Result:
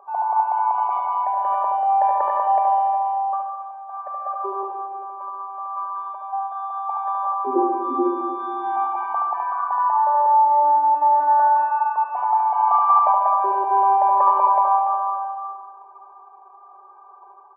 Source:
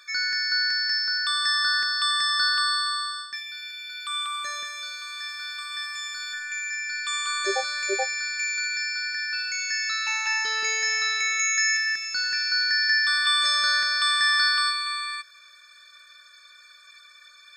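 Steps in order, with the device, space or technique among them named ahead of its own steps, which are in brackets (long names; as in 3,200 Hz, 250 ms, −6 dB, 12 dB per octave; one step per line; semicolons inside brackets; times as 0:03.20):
elliptic band-pass filter 570–2,100 Hz, stop band 50 dB
monster voice (pitch shifter −7 semitones; formants moved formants −5 semitones; low-shelf EQ 140 Hz +7.5 dB; single-tap delay 73 ms −6 dB; convolution reverb RT60 1.9 s, pre-delay 32 ms, DRR 3 dB)
0:00.46–0:01.37: dynamic equaliser 790 Hz, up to −3 dB, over −34 dBFS, Q 0.96
level +7.5 dB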